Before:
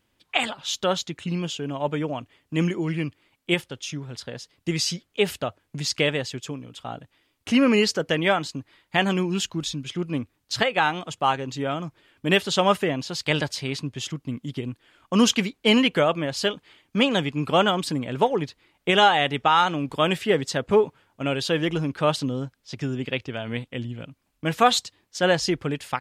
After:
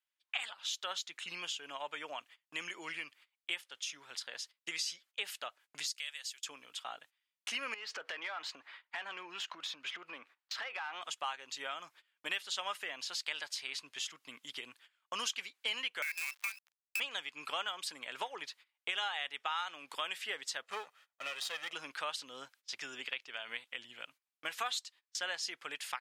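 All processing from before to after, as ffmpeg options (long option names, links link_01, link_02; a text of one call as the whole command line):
ffmpeg -i in.wav -filter_complex "[0:a]asettb=1/sr,asplit=3[link_01][link_02][link_03];[link_01]atrim=end=5.864[link_04];[link_02]atrim=start=5.86:end=6.43,asetpts=PTS-STARTPTS,afade=type=in:duration=0.004:curve=qsin,afade=type=out:start_time=0.566:duration=0.004:curve=qsin,highpass=310,aderivative[link_05];[link_03]atrim=start=6.426[link_06];[link_04][link_05]acrossfade=duration=0.004:curve1=hsin:curve2=qsin[link_07];[link_07][link_06]acrossfade=duration=0.004:curve1=qsin:curve2=hsin,asettb=1/sr,asplit=3[link_08][link_09][link_10];[link_08]atrim=end=7.744[link_11];[link_09]atrim=start=7.74:end=11.02,asetpts=PTS-STARTPTS,afade=type=in:duration=0.004:curve=qsin,afade=type=out:start_time=3.276:duration=0.004:curve=qsin,lowpass=frequency=3500:poles=1,acompressor=threshold=-36dB:ratio=6:attack=3.2:release=140:knee=1:detection=peak,asplit=2[link_12][link_13];[link_13]highpass=frequency=720:poles=1,volume=21dB,asoftclip=type=tanh:threshold=-17dB[link_14];[link_12][link_14]amix=inputs=2:normalize=0,lowpass=frequency=1300:poles=1,volume=-6dB[link_15];[link_10]atrim=start=11.016[link_16];[link_11][link_15]acrossfade=duration=0.004:curve1=hsin:curve2=qsin[link_17];[link_17][link_16]acrossfade=duration=0.004:curve1=qsin:curve2=hsin,asettb=1/sr,asplit=3[link_18][link_19][link_20];[link_18]atrim=end=16.024[link_21];[link_19]atrim=start=16.02:end=17,asetpts=PTS-STARTPTS,afade=type=in:duration=0.004:curve=qsin,afade=type=out:start_time=0.976:duration=0.004:curve=qsin,lowpass=frequency=2400:width_type=q:width=0.5098,lowpass=frequency=2400:width_type=q:width=0.6013,lowpass=frequency=2400:width_type=q:width=0.9,lowpass=frequency=2400:width_type=q:width=2.563,afreqshift=-2800,acrusher=bits=5:dc=4:mix=0:aa=0.000001,acompressor=threshold=-23dB:ratio=2:attack=3.2:release=140:knee=1:detection=peak[link_22];[link_20]atrim=start=16.996[link_23];[link_21][link_22]acrossfade=duration=0.004:curve1=hsin:curve2=qsin[link_24];[link_24][link_23]acrossfade=duration=0.004:curve1=qsin:curve2=hsin,asettb=1/sr,asplit=3[link_25][link_26][link_27];[link_25]atrim=end=20.634[link_28];[link_26]atrim=start=20.63:end=21.73,asetpts=PTS-STARTPTS,afade=type=in:duration=0.004:curve=qsin,afade=type=out:start_time=1.096:duration=0.004:curve=qsin,aeval=exprs='if(lt(val(0),0),0.251*val(0),val(0))':channel_layout=same,aecho=1:1:1.6:0.47,atrim=end_sample=48510[link_29];[link_27]atrim=start=21.726[link_30];[link_28][link_29]acrossfade=duration=0.004:curve1=hsin:curve2=qsin[link_31];[link_31][link_30]acrossfade=duration=0.004:curve1=qsin:curve2=hsin,agate=range=-20dB:threshold=-47dB:ratio=16:detection=peak,highpass=1300,acompressor=threshold=-40dB:ratio=3,volume=1dB" out.wav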